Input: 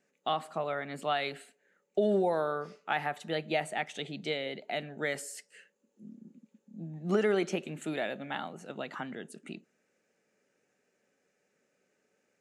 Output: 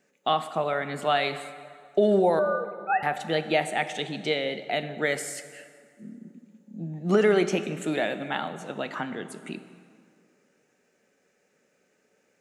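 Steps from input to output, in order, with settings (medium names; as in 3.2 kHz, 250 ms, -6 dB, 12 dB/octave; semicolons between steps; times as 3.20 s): 2.39–3.03 s: formants replaced by sine waves; plate-style reverb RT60 2.2 s, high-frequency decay 0.65×, DRR 10.5 dB; trim +6.5 dB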